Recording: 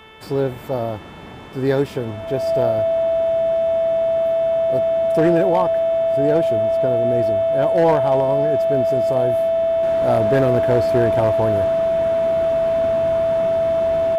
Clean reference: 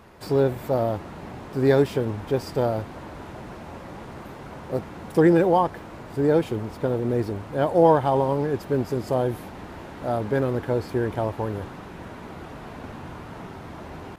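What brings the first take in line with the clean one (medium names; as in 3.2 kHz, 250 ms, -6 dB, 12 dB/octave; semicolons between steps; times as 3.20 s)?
clip repair -9 dBFS; de-hum 439.2 Hz, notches 8; band-stop 660 Hz, Q 30; trim 0 dB, from 9.83 s -6 dB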